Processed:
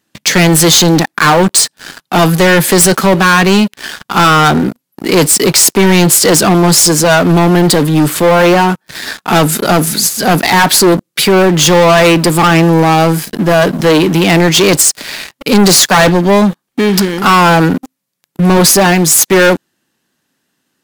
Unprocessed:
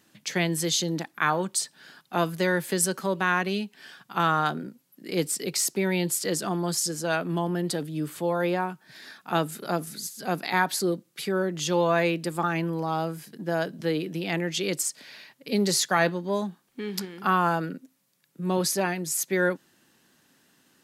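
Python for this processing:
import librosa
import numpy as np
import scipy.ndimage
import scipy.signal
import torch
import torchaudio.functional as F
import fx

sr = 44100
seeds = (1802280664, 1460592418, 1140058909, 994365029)

y = fx.leveller(x, sr, passes=5)
y = y * librosa.db_to_amplitude(7.0)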